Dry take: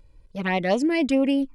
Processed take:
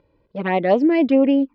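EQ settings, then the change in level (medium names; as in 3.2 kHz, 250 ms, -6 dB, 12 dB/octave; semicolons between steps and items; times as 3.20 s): high-pass 370 Hz 12 dB/octave; low-pass 4.6 kHz 24 dB/octave; tilt EQ -4 dB/octave; +4.0 dB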